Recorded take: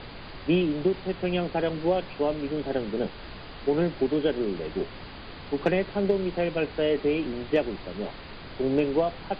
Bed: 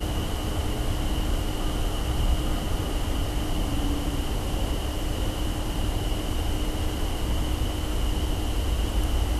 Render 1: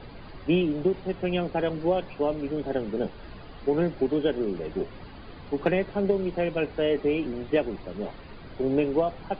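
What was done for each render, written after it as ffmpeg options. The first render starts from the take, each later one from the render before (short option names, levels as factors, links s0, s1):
-af "afftdn=nr=10:nf=-42"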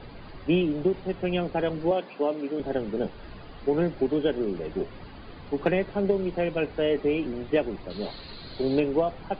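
-filter_complex "[0:a]asettb=1/sr,asplit=3[s0][s1][s2];[s0]atrim=end=1.914[s3];[s1]atrim=start=1.91:end=2.6,asetpts=PTS-STARTPTS,afade=t=in:d=0.004:c=qsin,afade=t=out:st=0.686:d=0.004:c=qsin,highpass=f=200:w=0.5412,highpass=f=200:w=1.3066[s4];[s2]atrim=start=2.596[s5];[s3][s4]acrossfade=d=0.004:c1=hsin:c2=qsin[s6];[s6][s5]acrossfade=d=0.004:c1=qsin:c2=hsin,asettb=1/sr,asplit=3[s7][s8][s9];[s7]atrim=end=7.904[s10];[s8]atrim=start=7.9:end=8.8,asetpts=PTS-STARTPTS,afade=t=in:d=0.004:c=qsin,afade=t=out:st=0.896:d=0.004:c=qsin,lowpass=f=4200:t=q:w=9.3[s11];[s9]atrim=start=8.796[s12];[s10][s11]acrossfade=d=0.004:c1=hsin:c2=qsin[s13];[s13][s12]acrossfade=d=0.004:c1=qsin:c2=hsin"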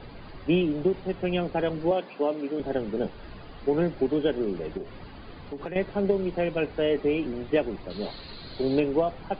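-filter_complex "[0:a]asettb=1/sr,asplit=3[s0][s1][s2];[s0]atrim=end=4.774[s3];[s1]atrim=start=4.77:end=5.76,asetpts=PTS-STARTPTS,afade=t=in:d=0.004:c=qsin,afade=t=out:st=0.986:d=0.004:c=qsin,acompressor=threshold=0.0282:ratio=6:attack=3.2:release=140:knee=1:detection=peak[s4];[s2]atrim=start=5.756[s5];[s3][s4]acrossfade=d=0.004:c1=hsin:c2=qsin[s6];[s6][s5]acrossfade=d=0.004:c1=qsin:c2=hsin"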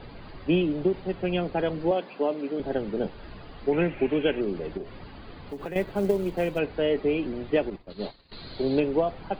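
-filter_complex "[0:a]asettb=1/sr,asplit=3[s0][s1][s2];[s0]atrim=end=3.724[s3];[s1]atrim=start=3.72:end=4.41,asetpts=PTS-STARTPTS,afade=t=in:d=0.004:c=qsin,afade=t=out:st=0.686:d=0.004:c=qsin,lowpass=f=2500:t=q:w=5.4[s4];[s2]atrim=start=4.406[s5];[s3][s4]acrossfade=d=0.004:c1=hsin:c2=qsin[s6];[s6][s5]acrossfade=d=0.004:c1=qsin:c2=hsin,asettb=1/sr,asplit=3[s7][s8][s9];[s7]atrim=end=5.494[s10];[s8]atrim=start=5.49:end=6.59,asetpts=PTS-STARTPTS,afade=t=in:d=0.004:c=qsin,afade=t=out:st=1.096:d=0.004:c=qsin,acrusher=bits=7:mode=log:mix=0:aa=0.000001[s11];[s9]atrim=start=6.586[s12];[s10][s11]acrossfade=d=0.004:c1=hsin:c2=qsin[s13];[s13][s12]acrossfade=d=0.004:c1=qsin:c2=hsin,asettb=1/sr,asplit=3[s14][s15][s16];[s14]atrim=end=7.704[s17];[s15]atrim=start=7.7:end=8.32,asetpts=PTS-STARTPTS,afade=t=in:d=0.004:c=qsin,afade=t=out:st=0.616:d=0.004:c=qsin,agate=range=0.0224:threshold=0.0282:ratio=3:release=100:detection=peak[s18];[s16]atrim=start=8.316[s19];[s17][s18]acrossfade=d=0.004:c1=hsin:c2=qsin[s20];[s20][s19]acrossfade=d=0.004:c1=qsin:c2=hsin"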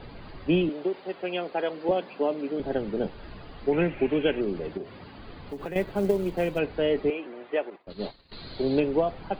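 -filter_complex "[0:a]asettb=1/sr,asplit=3[s0][s1][s2];[s0]atrim=end=0.694[s3];[s1]atrim=start=0.69:end=1.89,asetpts=PTS-STARTPTS,afade=t=in:d=0.004:c=qsin,afade=t=out:st=1.196:d=0.004:c=qsin,highpass=400[s4];[s2]atrim=start=1.886[s5];[s3][s4]acrossfade=d=0.004:c1=hsin:c2=qsin[s6];[s6][s5]acrossfade=d=0.004:c1=qsin:c2=hsin,asettb=1/sr,asplit=3[s7][s8][s9];[s7]atrim=end=4.684[s10];[s8]atrim=start=4.68:end=5.19,asetpts=PTS-STARTPTS,afade=t=in:d=0.004:c=qsin,afade=t=out:st=0.506:d=0.004:c=qsin,highpass=90[s11];[s9]atrim=start=5.186[s12];[s10][s11]acrossfade=d=0.004:c1=hsin:c2=qsin[s13];[s13][s12]acrossfade=d=0.004:c1=qsin:c2=hsin,asettb=1/sr,asplit=3[s14][s15][s16];[s14]atrim=end=7.104[s17];[s15]atrim=start=7.1:end=7.87,asetpts=PTS-STARTPTS,afade=t=in:d=0.004:c=qsin,afade=t=out:st=0.766:d=0.004:c=qsin,highpass=520,lowpass=2600[s18];[s16]atrim=start=7.866[s19];[s17][s18]acrossfade=d=0.004:c1=hsin:c2=qsin[s20];[s20][s19]acrossfade=d=0.004:c1=qsin:c2=hsin"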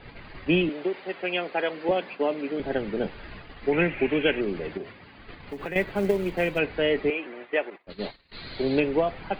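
-af "agate=range=0.501:threshold=0.00794:ratio=16:detection=peak,equalizer=f=2100:t=o:w=1.1:g=9.5"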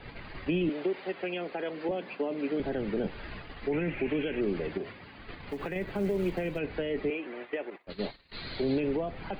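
-filter_complex "[0:a]alimiter=limit=0.1:level=0:latency=1:release=23,acrossover=split=440[s0][s1];[s1]acompressor=threshold=0.0158:ratio=6[s2];[s0][s2]amix=inputs=2:normalize=0"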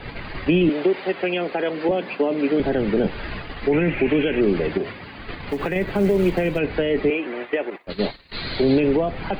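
-af "volume=3.55"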